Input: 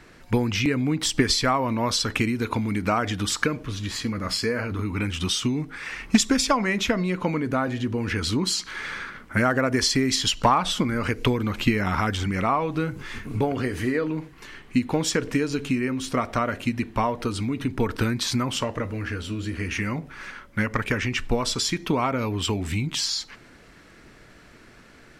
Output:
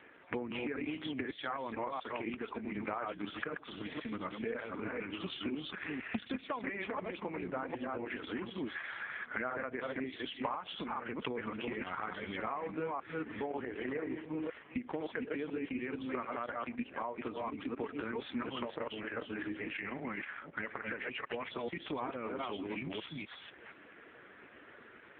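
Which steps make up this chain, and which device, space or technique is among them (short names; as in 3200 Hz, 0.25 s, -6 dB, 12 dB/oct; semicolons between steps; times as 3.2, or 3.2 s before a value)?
reverse delay 0.25 s, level -2 dB; 4.54–6.34 HPF 82 Hz 24 dB/oct; voicemail (BPF 310–3100 Hz; compressor 6:1, threshold -34 dBFS, peak gain reduction 19.5 dB; AMR-NB 4.75 kbps 8000 Hz)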